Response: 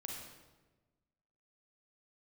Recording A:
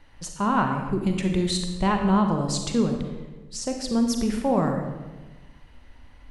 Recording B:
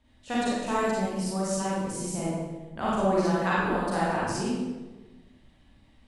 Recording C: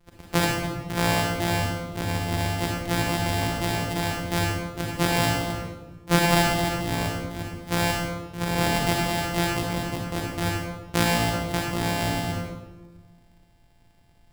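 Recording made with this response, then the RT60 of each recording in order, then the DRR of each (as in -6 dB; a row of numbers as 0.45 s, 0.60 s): C; 1.2 s, 1.2 s, 1.2 s; 4.0 dB, -8.0 dB, -1.0 dB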